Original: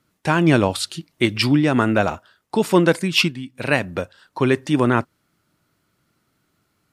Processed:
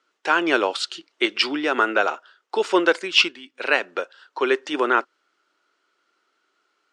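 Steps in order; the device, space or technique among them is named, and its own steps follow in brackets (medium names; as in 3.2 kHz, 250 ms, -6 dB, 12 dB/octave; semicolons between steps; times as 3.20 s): phone speaker on a table (cabinet simulation 380–6900 Hz, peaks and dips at 390 Hz +3 dB, 630 Hz -3 dB, 1.4 kHz +6 dB, 3 kHz +4 dB); trim -1 dB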